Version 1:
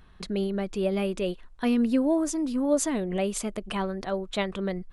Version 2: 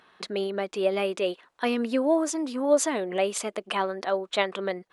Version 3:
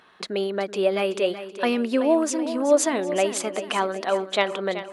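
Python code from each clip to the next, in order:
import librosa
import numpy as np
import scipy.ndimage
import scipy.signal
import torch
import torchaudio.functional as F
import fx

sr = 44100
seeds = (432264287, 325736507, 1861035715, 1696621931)

y1 = scipy.signal.sosfilt(scipy.signal.butter(2, 440.0, 'highpass', fs=sr, output='sos'), x)
y1 = fx.high_shelf(y1, sr, hz=7900.0, db=-9.0)
y1 = y1 * 10.0 ** (5.5 / 20.0)
y2 = fx.echo_feedback(y1, sr, ms=379, feedback_pct=45, wet_db=-12)
y2 = y2 * 10.0 ** (3.0 / 20.0)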